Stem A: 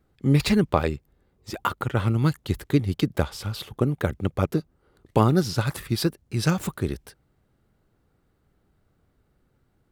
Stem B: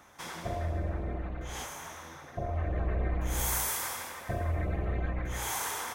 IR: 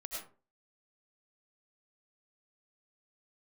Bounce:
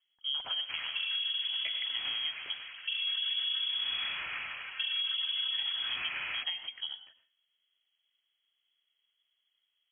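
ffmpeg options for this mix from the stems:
-filter_complex "[0:a]highpass=48,alimiter=limit=0.355:level=0:latency=1:release=313,volume=0.2,asplit=3[s0][s1][s2];[s0]atrim=end=2.66,asetpts=PTS-STARTPTS,afade=t=out:st=2.656:d=0.004:c=hsin[s3];[s1]atrim=start=2.66:end=5.49,asetpts=PTS-STARTPTS,volume=0[s4];[s2]atrim=start=5.49,asetpts=PTS-STARTPTS,afade=t=in:d=0.004:c=hsin[s5];[s3][s4][s5]concat=n=3:v=0:a=1,asplit=2[s6][s7];[s7]volume=0.501[s8];[1:a]aemphasis=mode=reproduction:type=75kf,adelay=500,volume=1.33[s9];[2:a]atrim=start_sample=2205[s10];[s8][s10]afir=irnorm=-1:irlink=0[s11];[s6][s9][s11]amix=inputs=3:normalize=0,lowpass=f=2900:t=q:w=0.5098,lowpass=f=2900:t=q:w=0.6013,lowpass=f=2900:t=q:w=0.9,lowpass=f=2900:t=q:w=2.563,afreqshift=-3400,acompressor=threshold=0.0282:ratio=4"

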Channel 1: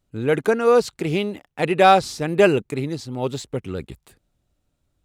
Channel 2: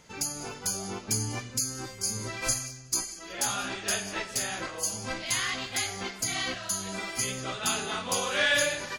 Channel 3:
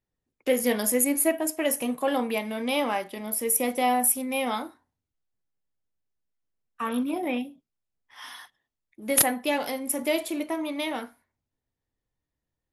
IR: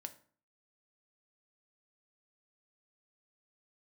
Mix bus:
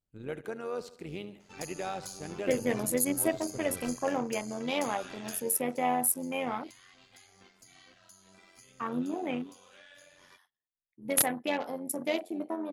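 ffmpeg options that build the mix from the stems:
-filter_complex "[0:a]alimiter=limit=0.299:level=0:latency=1,volume=0.168,asplit=2[s0][s1];[s1]volume=0.178[s2];[1:a]acompressor=threshold=0.0224:ratio=4,adelay=1400,volume=0.501,afade=t=out:st=5.34:d=0.22:silence=0.223872[s3];[2:a]afwtdn=0.0158,adelay=2000,volume=0.75[s4];[s2]aecho=0:1:74|148|222|296|370|444|518:1|0.48|0.23|0.111|0.0531|0.0255|0.0122[s5];[s0][s3][s4][s5]amix=inputs=4:normalize=0,tremolo=f=91:d=0.571"

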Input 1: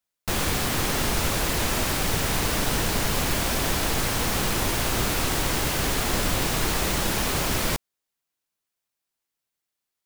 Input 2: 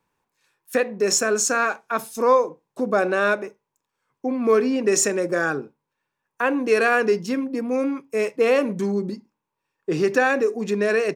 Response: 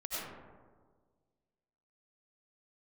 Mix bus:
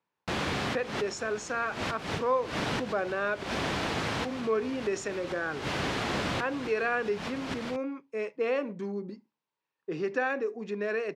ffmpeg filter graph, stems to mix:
-filter_complex "[0:a]volume=0.708[s0];[1:a]lowshelf=f=340:g=-3,volume=0.335,asplit=2[s1][s2];[s2]apad=whole_len=443544[s3];[s0][s3]sidechaincompress=threshold=0.00708:ratio=10:attack=5.5:release=119[s4];[s4][s1]amix=inputs=2:normalize=0,highpass=110,lowpass=3700"

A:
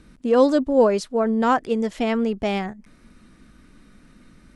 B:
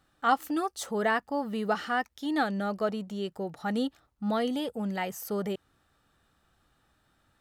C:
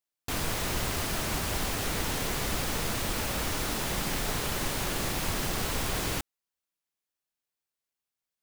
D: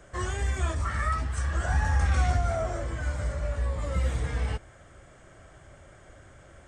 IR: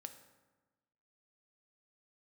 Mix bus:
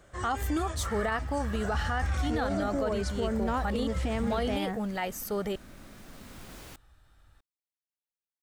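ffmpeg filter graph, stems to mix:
-filter_complex "[0:a]acompressor=threshold=0.0447:ratio=6,adelay=2050,volume=0.944[s0];[1:a]asubboost=boost=8.5:cutoff=68,volume=1.26,asplit=2[s1][s2];[2:a]adelay=550,volume=0.188[s3];[3:a]volume=0.562[s4];[s2]apad=whole_len=395595[s5];[s3][s5]sidechaincompress=threshold=0.00891:ratio=8:attack=6.2:release=1270[s6];[s0][s1][s6][s4]amix=inputs=4:normalize=0,alimiter=limit=0.0891:level=0:latency=1:release=30"

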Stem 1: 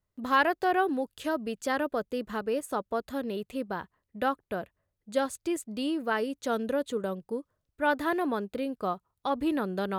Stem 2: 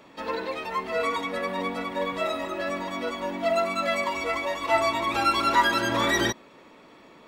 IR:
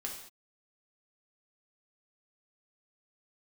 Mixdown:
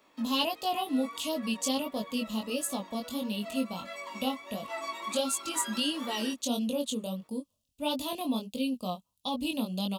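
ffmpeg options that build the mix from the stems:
-filter_complex "[0:a]firequalizer=gain_entry='entry(130,0);entry(240,12);entry(370,-10);entry(530,2);entry(1100,-3);entry(1600,-28);entry(2700,11);entry(4000,9);entry(7500,9);entry(14000,6)':delay=0.05:min_phase=1,volume=0.708,asplit=2[s0][s1];[1:a]highpass=f=200:w=0.5412,highpass=f=200:w=1.3066,equalizer=f=1100:t=o:w=0.25:g=5,volume=0.282[s2];[s1]apad=whole_len=320727[s3];[s2][s3]sidechaincompress=threshold=0.02:ratio=3:attack=16:release=975[s4];[s0][s4]amix=inputs=2:normalize=0,flanger=delay=19:depth=4:speed=1.5,highshelf=f=3100:g=9"

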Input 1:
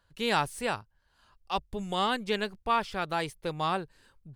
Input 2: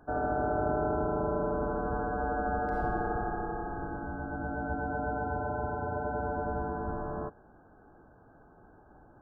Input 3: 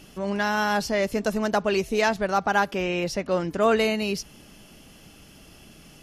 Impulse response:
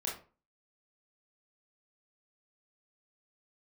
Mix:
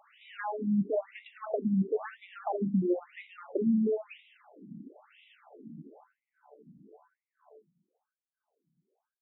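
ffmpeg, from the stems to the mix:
-filter_complex "[0:a]asoftclip=type=hard:threshold=0.0501,volume=0.2[s0];[1:a]firequalizer=gain_entry='entry(100,0);entry(270,-29);entry(440,-15);entry(1400,-22)':delay=0.05:min_phase=1,aeval=exprs='(tanh(89.1*val(0)+0.45)-tanh(0.45))/89.1':c=same,adelay=300,volume=0.708,asplit=2[s1][s2];[s2]volume=0.398[s3];[2:a]bandreject=f=1600:w=15,acrossover=split=240|680|3000[s4][s5][s6][s7];[s4]acompressor=threshold=0.0158:ratio=4[s8];[s5]acompressor=threshold=0.0282:ratio=4[s9];[s6]acompressor=threshold=0.01:ratio=4[s10];[s7]acompressor=threshold=0.0112:ratio=4[s11];[s8][s9][s10][s11]amix=inputs=4:normalize=0,acrusher=bits=8:mix=0:aa=0.000001,volume=0.841,asplit=2[s12][s13];[s13]volume=0.422[s14];[3:a]atrim=start_sample=2205[s15];[s3][s14]amix=inputs=2:normalize=0[s16];[s16][s15]afir=irnorm=-1:irlink=0[s17];[s0][s1][s12][s17]amix=inputs=4:normalize=0,aemphasis=mode=reproduction:type=riaa,afftfilt=real='re*between(b*sr/1024,210*pow(2800/210,0.5+0.5*sin(2*PI*1*pts/sr))/1.41,210*pow(2800/210,0.5+0.5*sin(2*PI*1*pts/sr))*1.41)':imag='im*between(b*sr/1024,210*pow(2800/210,0.5+0.5*sin(2*PI*1*pts/sr))/1.41,210*pow(2800/210,0.5+0.5*sin(2*PI*1*pts/sr))*1.41)':win_size=1024:overlap=0.75"

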